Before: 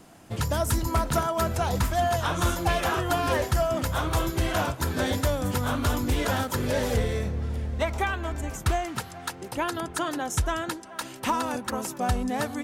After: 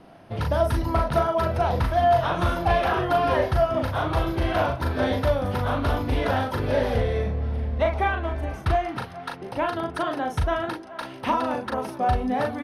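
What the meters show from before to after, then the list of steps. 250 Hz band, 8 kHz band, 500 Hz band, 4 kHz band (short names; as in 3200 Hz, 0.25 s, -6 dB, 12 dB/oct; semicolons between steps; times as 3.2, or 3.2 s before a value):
+1.0 dB, under -10 dB, +5.0 dB, -2.5 dB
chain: running mean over 6 samples; bell 660 Hz +5 dB 0.76 oct; doubler 39 ms -4 dB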